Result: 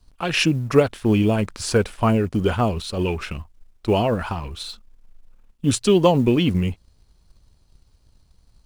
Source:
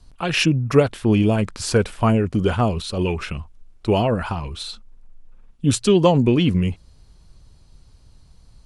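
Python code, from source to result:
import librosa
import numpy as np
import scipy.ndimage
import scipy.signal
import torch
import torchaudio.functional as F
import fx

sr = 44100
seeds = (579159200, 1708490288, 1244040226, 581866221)

y = fx.law_mismatch(x, sr, coded='A')
y = fx.peak_eq(y, sr, hz=140.0, db=-3.0, octaves=0.77)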